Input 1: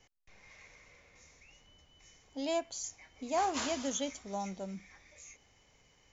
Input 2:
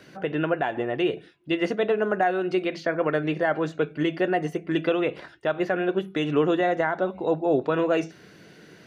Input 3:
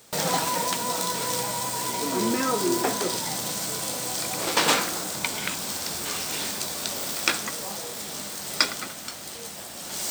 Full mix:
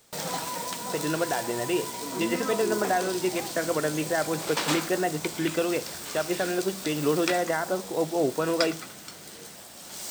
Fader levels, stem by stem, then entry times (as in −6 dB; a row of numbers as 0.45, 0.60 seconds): −9.5, −3.0, −7.0 decibels; 0.00, 0.70, 0.00 seconds